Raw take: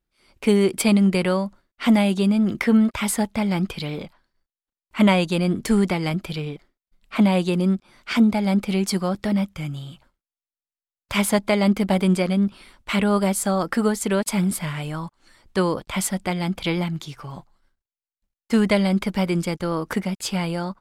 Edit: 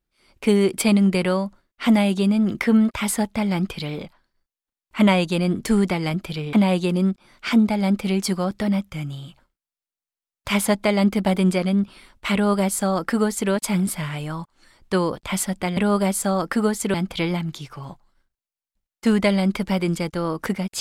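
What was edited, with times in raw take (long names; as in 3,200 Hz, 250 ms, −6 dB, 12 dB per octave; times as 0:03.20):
0:06.53–0:07.17: remove
0:12.98–0:14.15: duplicate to 0:16.41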